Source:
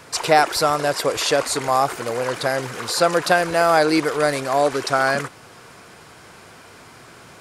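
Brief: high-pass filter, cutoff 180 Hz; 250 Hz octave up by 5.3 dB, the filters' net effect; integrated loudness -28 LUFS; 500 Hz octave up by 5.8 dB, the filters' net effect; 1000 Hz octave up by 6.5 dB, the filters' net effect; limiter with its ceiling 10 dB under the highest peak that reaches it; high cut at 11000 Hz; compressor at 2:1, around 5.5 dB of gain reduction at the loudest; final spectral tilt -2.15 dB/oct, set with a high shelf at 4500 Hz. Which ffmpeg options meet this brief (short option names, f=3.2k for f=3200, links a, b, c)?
-af "highpass=180,lowpass=11k,equalizer=f=250:t=o:g=6,equalizer=f=500:t=o:g=3.5,equalizer=f=1k:t=o:g=7,highshelf=f=4.5k:g=8,acompressor=threshold=-14dB:ratio=2,volume=-7dB,alimiter=limit=-17.5dB:level=0:latency=1"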